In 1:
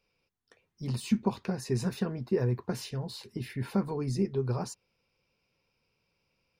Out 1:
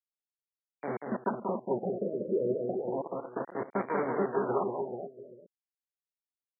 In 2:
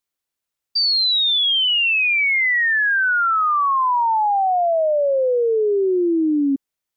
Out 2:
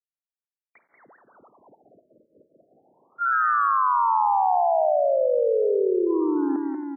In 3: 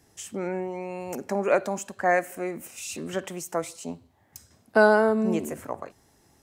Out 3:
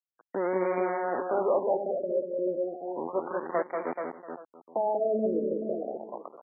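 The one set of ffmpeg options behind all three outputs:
-filter_complex "[0:a]afftfilt=real='re*gte(hypot(re,im),0.02)':imag='im*gte(hypot(re,im),0.02)':win_size=1024:overlap=0.75,acrossover=split=790|1100[a][b][c];[a]alimiter=limit=-20.5dB:level=0:latency=1:release=84[d];[d][b][c]amix=inputs=3:normalize=0,aeval=exprs='val(0)*gte(abs(val(0)),0.0266)':c=same,asplit=2[e][f];[f]adynamicsmooth=sensitivity=2:basefreq=2.9k,volume=-1dB[g];[e][g]amix=inputs=2:normalize=0,asplit=2[h][i];[i]highpass=f=720:p=1,volume=20dB,asoftclip=type=tanh:threshold=-6.5dB[j];[h][j]amix=inputs=2:normalize=0,lowpass=f=1.1k:p=1,volume=-6dB,asoftclip=type=tanh:threshold=-13dB,highpass=260,lowpass=5.6k,aecho=1:1:186|273|430|684|824:0.596|0.158|0.473|0.106|0.106,afftfilt=real='re*lt(b*sr/1024,620*pow(2400/620,0.5+0.5*sin(2*PI*0.32*pts/sr)))':imag='im*lt(b*sr/1024,620*pow(2400/620,0.5+0.5*sin(2*PI*0.32*pts/sr)))':win_size=1024:overlap=0.75,volume=-6.5dB"

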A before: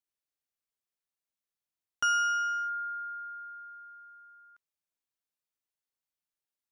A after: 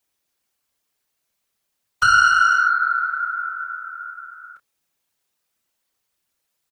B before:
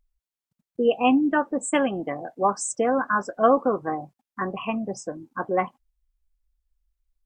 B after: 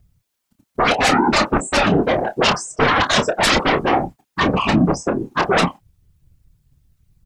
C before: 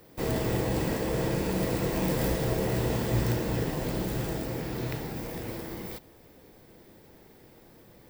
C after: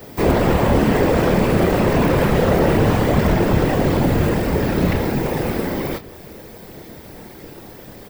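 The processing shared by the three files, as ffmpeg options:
-filter_complex "[0:a]acrossover=split=130|3000[a][b][c];[c]acompressor=threshold=-49dB:ratio=6[d];[a][b][d]amix=inputs=3:normalize=0,aeval=exprs='0.501*sin(PI/2*7.94*val(0)/0.501)':c=same,afftfilt=real='hypot(re,im)*cos(2*PI*random(0))':imag='hypot(re,im)*sin(2*PI*random(1))':win_size=512:overlap=0.75,asplit=2[e][f];[f]adelay=28,volume=-10dB[g];[e][g]amix=inputs=2:normalize=0"

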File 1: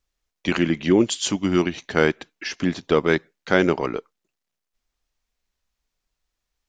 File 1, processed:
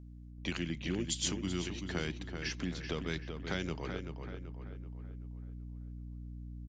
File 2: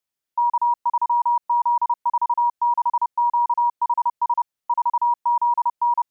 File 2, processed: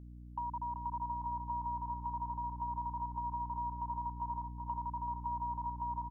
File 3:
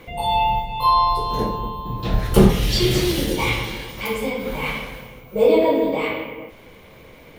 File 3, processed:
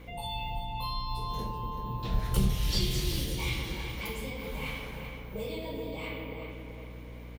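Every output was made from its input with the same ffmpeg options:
-filter_complex "[0:a]acrossover=split=160|2700[a][b][c];[b]acompressor=threshold=-31dB:ratio=5[d];[a][d][c]amix=inputs=3:normalize=0,aeval=exprs='val(0)+0.01*(sin(2*PI*60*n/s)+sin(2*PI*2*60*n/s)/2+sin(2*PI*3*60*n/s)/3+sin(2*PI*4*60*n/s)/4+sin(2*PI*5*60*n/s)/5)':c=same,asplit=2[e][f];[f]adelay=383,lowpass=f=3.1k:p=1,volume=-6.5dB,asplit=2[g][h];[h]adelay=383,lowpass=f=3.1k:p=1,volume=0.48,asplit=2[i][j];[j]adelay=383,lowpass=f=3.1k:p=1,volume=0.48,asplit=2[k][l];[l]adelay=383,lowpass=f=3.1k:p=1,volume=0.48,asplit=2[m][n];[n]adelay=383,lowpass=f=3.1k:p=1,volume=0.48,asplit=2[o][p];[p]adelay=383,lowpass=f=3.1k:p=1,volume=0.48[q];[e][g][i][k][m][o][q]amix=inputs=7:normalize=0,volume=-8.5dB"

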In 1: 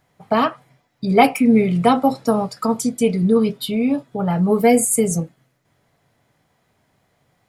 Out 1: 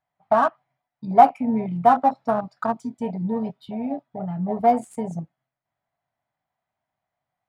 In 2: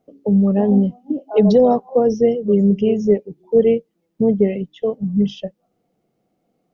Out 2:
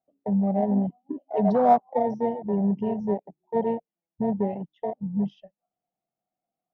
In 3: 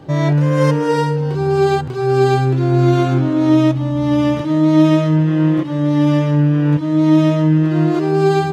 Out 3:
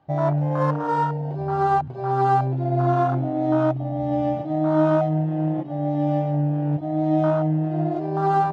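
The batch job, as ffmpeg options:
-af "afwtdn=0.141,lowshelf=f=560:t=q:w=3:g=-6,adynamicsmooth=sensitivity=5:basefreq=4.1k,volume=-2dB"

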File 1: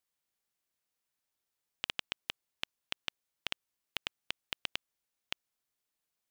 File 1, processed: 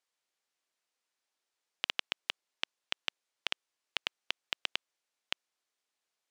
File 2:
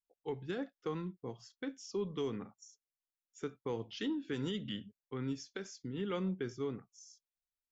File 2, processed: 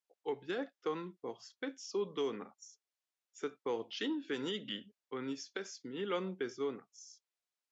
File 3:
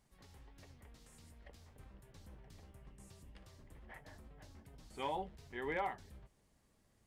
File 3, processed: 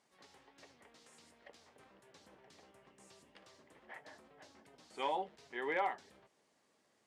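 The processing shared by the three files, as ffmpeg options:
-af "highpass=340,lowpass=7.5k,volume=3.5dB"

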